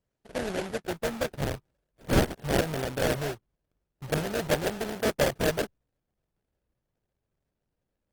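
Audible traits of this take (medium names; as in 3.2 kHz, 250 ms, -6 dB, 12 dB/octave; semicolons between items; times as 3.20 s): aliases and images of a low sample rate 1.1 kHz, jitter 20%; Opus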